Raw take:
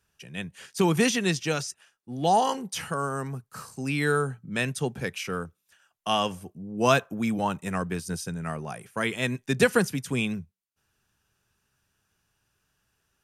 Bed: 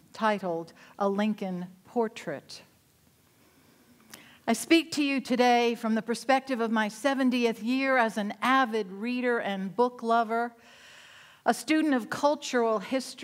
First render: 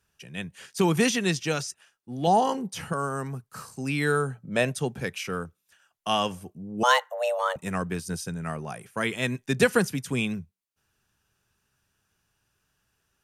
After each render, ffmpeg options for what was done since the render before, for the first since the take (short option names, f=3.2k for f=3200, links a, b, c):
-filter_complex "[0:a]asettb=1/sr,asplit=3[a][b][c];[a]atrim=end=2.274[d];[b]atrim=start=2.27:end=2.93,asetpts=PTS-STARTPTS,afade=t=in:d=0.004:c=qsin,afade=t=out:st=0.656:d=0.004:c=qsin,tiltshelf=f=810:g=4.5[e];[c]atrim=start=2.926[f];[d][e]acrossfade=d=0.004:c1=hsin:c2=qsin[g];[g][f]acrossfade=d=0.004:c1=qsin:c2=hsin,asettb=1/sr,asplit=3[h][i][j];[h]atrim=end=4.354[k];[i]atrim=start=4.35:end=4.77,asetpts=PTS-STARTPTS,afade=t=in:d=0.004:c=qsin,afade=t=out:st=0.416:d=0.004:c=qsin,equalizer=f=610:w=1.7:g=12[l];[j]atrim=start=4.766[m];[k][l]acrossfade=d=0.004:c1=hsin:c2=qsin[n];[n][m]acrossfade=d=0.004:c1=qsin:c2=hsin,asettb=1/sr,asplit=3[o][p][q];[o]atrim=end=6.834[r];[p]atrim=start=6.83:end=7.56,asetpts=PTS-STARTPTS,afade=t=in:d=0.004:c=qsin,afade=t=out:st=0.726:d=0.004:c=qsin,afreqshift=370[s];[q]atrim=start=7.556[t];[r][s]acrossfade=d=0.004:c1=hsin:c2=qsin[u];[u][t]acrossfade=d=0.004:c1=qsin:c2=hsin"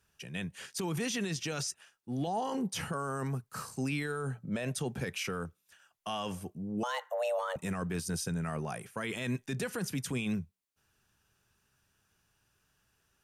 -af "acompressor=threshold=-24dB:ratio=6,alimiter=level_in=2dB:limit=-24dB:level=0:latency=1:release=22,volume=-2dB"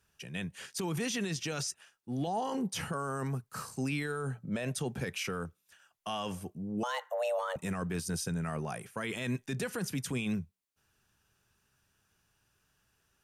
-af anull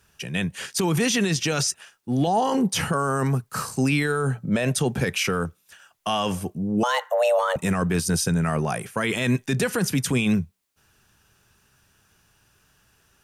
-af "volume=12dB"